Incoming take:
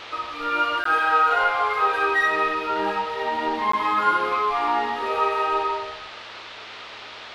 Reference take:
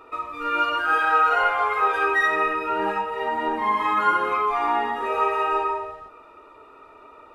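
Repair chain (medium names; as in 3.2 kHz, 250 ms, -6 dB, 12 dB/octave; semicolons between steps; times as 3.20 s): de-hum 111.1 Hz, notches 7; interpolate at 0.84/3.72 s, 14 ms; noise print and reduce 9 dB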